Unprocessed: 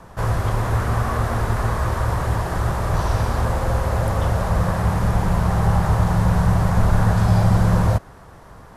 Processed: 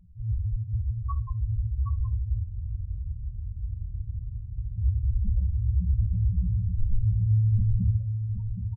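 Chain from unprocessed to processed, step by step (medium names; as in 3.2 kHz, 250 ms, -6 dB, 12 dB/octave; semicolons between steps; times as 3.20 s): treble shelf 2.1 kHz +11 dB; loudest bins only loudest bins 1; feedback delay 770 ms, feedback 32%, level -7.5 dB; on a send at -11 dB: reverberation RT60 0.25 s, pre-delay 3 ms; on the sum: spectral freeze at 2.45 s, 2.32 s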